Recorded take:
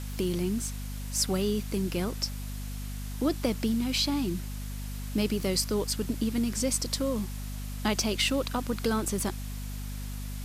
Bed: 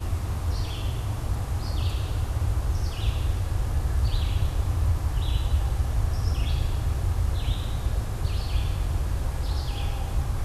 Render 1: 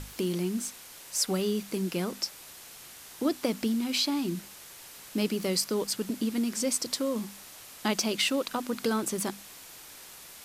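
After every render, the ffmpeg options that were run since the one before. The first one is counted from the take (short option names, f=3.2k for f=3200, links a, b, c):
-af "bandreject=f=50:t=h:w=6,bandreject=f=100:t=h:w=6,bandreject=f=150:t=h:w=6,bandreject=f=200:t=h:w=6,bandreject=f=250:t=h:w=6"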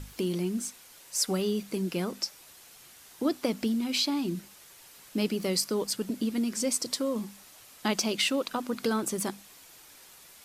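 -af "afftdn=nr=6:nf=-48"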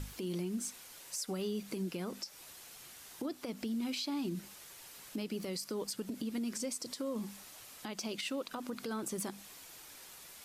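-af "acompressor=threshold=-33dB:ratio=6,alimiter=level_in=4.5dB:limit=-24dB:level=0:latency=1:release=77,volume=-4.5dB"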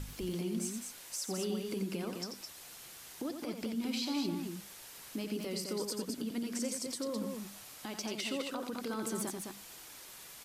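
-af "aecho=1:1:87.46|209.9:0.447|0.562"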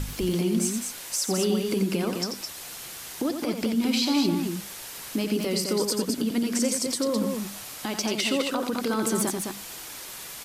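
-af "volume=11.5dB"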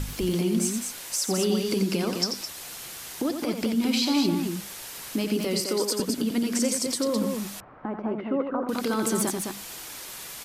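-filter_complex "[0:a]asettb=1/sr,asplit=3[a][b][c];[a]atrim=end=1.514[d];[b]atrim=start=1.51:end=2.43,asetpts=PTS-STARTPTS,afade=t=in:d=0.004:c=qsin,afade=t=out:st=0.916:d=0.004:c=qsin,equalizer=f=5k:t=o:w=0.77:g=5.5[e];[c]atrim=start=2.426[f];[d][e]acrossfade=d=0.004:c1=hsin:c2=qsin[g];[g][f]acrossfade=d=0.004:c1=qsin:c2=hsin,asettb=1/sr,asplit=3[h][i][j];[h]atrim=end=5.604[k];[i]atrim=start=5.6:end=6,asetpts=PTS-STARTPTS,afade=t=in:d=0.004:c=qsin,afade=t=out:st=0.396:d=0.004:c=qsin,highpass=f=230:w=0.5412,highpass=f=230:w=1.3066[l];[j]atrim=start=5.996[m];[k][l]acrossfade=d=0.004:c1=hsin:c2=qsin[n];[n][m]acrossfade=d=0.004:c1=qsin:c2=hsin,asettb=1/sr,asplit=3[o][p][q];[o]atrim=end=7.604[r];[p]atrim=start=7.6:end=8.69,asetpts=PTS-STARTPTS,afade=t=in:d=0.004:c=qsin,afade=t=out:st=1.086:d=0.004:c=qsin,lowpass=f=1.4k:w=0.5412,lowpass=f=1.4k:w=1.3066[s];[q]atrim=start=8.686[t];[r][s]acrossfade=d=0.004:c1=hsin:c2=qsin[u];[u][t]acrossfade=d=0.004:c1=qsin:c2=hsin"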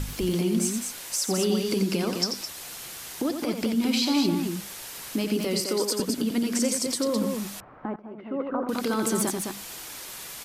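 -filter_complex "[0:a]asplit=2[a][b];[a]atrim=end=7.96,asetpts=PTS-STARTPTS,afade=t=out:st=7.956:d=0.004:c=hsin:silence=0.199526[c];[b]atrim=start=7.96,asetpts=PTS-STARTPTS,afade=t=in:d=0.55:c=qua:silence=0.199526[d];[c][d]concat=n=2:v=0:a=1"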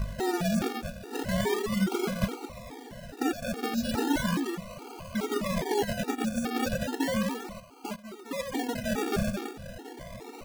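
-af "acrusher=samples=34:mix=1:aa=0.000001:lfo=1:lforange=20.4:lforate=0.35,afftfilt=real='re*gt(sin(2*PI*2.4*pts/sr)*(1-2*mod(floor(b*sr/1024/240),2)),0)':imag='im*gt(sin(2*PI*2.4*pts/sr)*(1-2*mod(floor(b*sr/1024/240),2)),0)':win_size=1024:overlap=0.75"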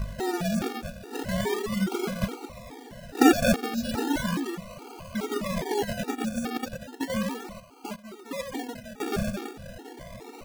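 -filter_complex "[0:a]asettb=1/sr,asplit=3[a][b][c];[a]atrim=end=6.574[d];[b]atrim=start=6.57:end=7.1,asetpts=PTS-STARTPTS,afade=t=in:d=0.004:c=qsin,afade=t=out:st=0.526:d=0.004:c=qsin,agate=range=-10dB:threshold=-28dB:ratio=16:release=100:detection=peak[e];[c]atrim=start=7.096[f];[d][e]acrossfade=d=0.004:c1=hsin:c2=qsin[g];[g][f]acrossfade=d=0.004:c1=qsin:c2=hsin,asplit=4[h][i][j][k];[h]atrim=end=3.152[l];[i]atrim=start=3.148:end=3.562,asetpts=PTS-STARTPTS,volume=11.5dB[m];[j]atrim=start=3.558:end=9,asetpts=PTS-STARTPTS,afade=t=out:st=4.872:d=0.57:silence=0.0841395[n];[k]atrim=start=9,asetpts=PTS-STARTPTS,afade=t=in:d=0.004:c=hsin:silence=0.0841395[o];[l][m]acrossfade=d=0.004:c1=hsin:c2=hsin[p];[n][o]concat=n=2:v=0:a=1[q];[p][q]acrossfade=d=0.004:c1=hsin:c2=hsin"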